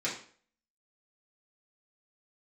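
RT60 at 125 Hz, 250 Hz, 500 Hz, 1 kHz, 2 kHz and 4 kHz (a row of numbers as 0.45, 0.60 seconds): 0.45, 0.45, 0.50, 0.45, 0.45, 0.40 seconds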